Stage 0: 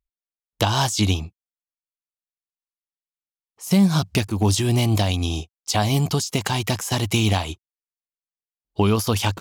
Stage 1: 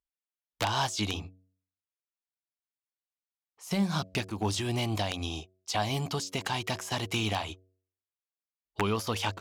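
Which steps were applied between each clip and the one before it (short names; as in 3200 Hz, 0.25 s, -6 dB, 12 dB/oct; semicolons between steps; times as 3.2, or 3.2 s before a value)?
wrapped overs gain 7.5 dB; overdrive pedal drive 8 dB, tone 3200 Hz, clips at -7.5 dBFS; de-hum 93.23 Hz, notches 7; gain -8 dB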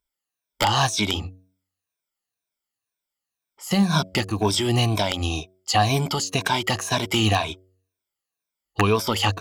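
moving spectral ripple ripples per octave 1.6, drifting -2 Hz, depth 12 dB; gain +7.5 dB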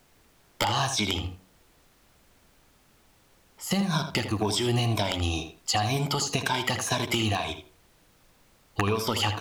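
compressor, threshold -23 dBFS, peak gain reduction 9 dB; added noise pink -61 dBFS; tape echo 79 ms, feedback 21%, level -7.5 dB, low-pass 3100 Hz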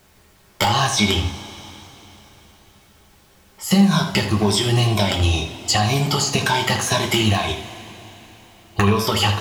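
two-slope reverb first 0.21 s, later 3.8 s, from -21 dB, DRR 1.5 dB; gain +5.5 dB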